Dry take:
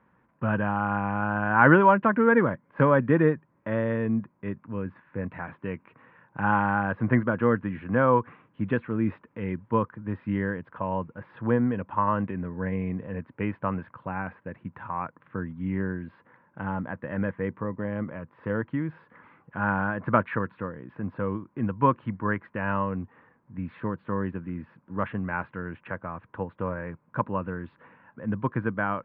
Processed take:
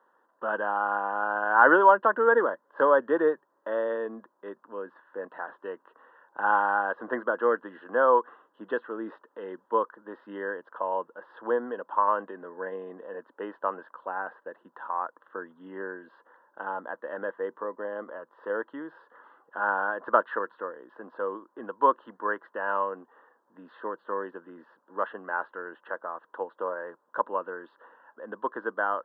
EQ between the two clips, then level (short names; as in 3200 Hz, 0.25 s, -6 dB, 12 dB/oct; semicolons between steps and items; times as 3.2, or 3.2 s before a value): HPF 390 Hz 24 dB/oct; Butterworth band-stop 2300 Hz, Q 1.7; +1.5 dB